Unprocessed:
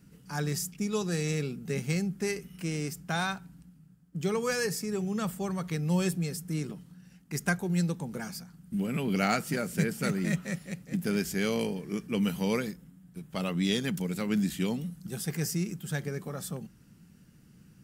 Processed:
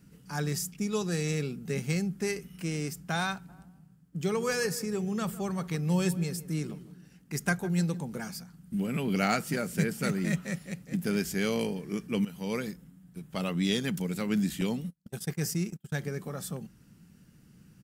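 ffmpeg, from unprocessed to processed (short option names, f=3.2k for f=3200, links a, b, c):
-filter_complex "[0:a]asplit=3[a][b][c];[a]afade=t=out:st=3.48:d=0.02[d];[b]asplit=2[e][f];[f]adelay=157,lowpass=f=1.2k:p=1,volume=-14dB,asplit=2[g][h];[h]adelay=157,lowpass=f=1.2k:p=1,volume=0.38,asplit=2[i][j];[j]adelay=157,lowpass=f=1.2k:p=1,volume=0.38,asplit=2[k][l];[l]adelay=157,lowpass=f=1.2k:p=1,volume=0.38[m];[e][g][i][k][m]amix=inputs=5:normalize=0,afade=t=in:st=3.48:d=0.02,afade=t=out:st=8:d=0.02[n];[c]afade=t=in:st=8:d=0.02[o];[d][n][o]amix=inputs=3:normalize=0,asettb=1/sr,asplit=3[p][q][r];[p]atrim=end=14.614[s];[q]atrim=start=14.61:end=15.95,asetpts=PTS-STARTPTS,afade=t=in:d=0.004:c=qsin,afade=t=out:st=1.336:d=0.004:c=qsin,agate=range=-34dB:threshold=-37dB:ratio=16:release=100:detection=peak[t];[r]atrim=start=15.946[u];[s][t]acrossfade=d=0.004:c1=hsin:c2=qsin[v];[v][u]acrossfade=d=0.004:c1=qsin:c2=hsin,asplit=2[w][x];[w]atrim=end=12.25,asetpts=PTS-STARTPTS,afade=t=out:st=12.246:d=0.004:c=hsin:silence=0.16788[y];[x]atrim=start=12.25,asetpts=PTS-STARTPTS,afade=t=in:d=0.48:silence=0.16788[z];[y][z]concat=n=2:v=0:a=1"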